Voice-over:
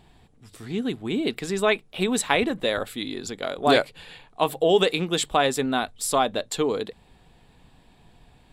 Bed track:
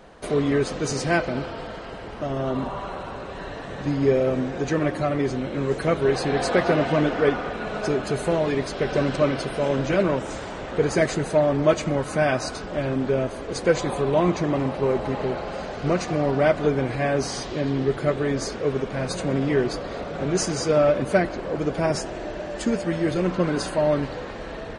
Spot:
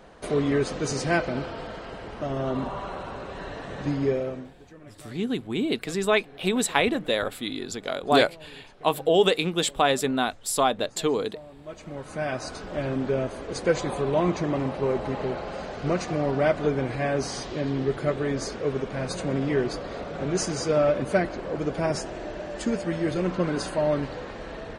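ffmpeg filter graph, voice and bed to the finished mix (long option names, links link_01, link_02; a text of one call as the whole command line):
ffmpeg -i stem1.wav -i stem2.wav -filter_complex "[0:a]adelay=4450,volume=-0.5dB[link_01];[1:a]volume=20.5dB,afade=type=out:start_time=3.88:duration=0.67:silence=0.0668344,afade=type=in:start_time=11.64:duration=1.18:silence=0.0749894[link_02];[link_01][link_02]amix=inputs=2:normalize=0" out.wav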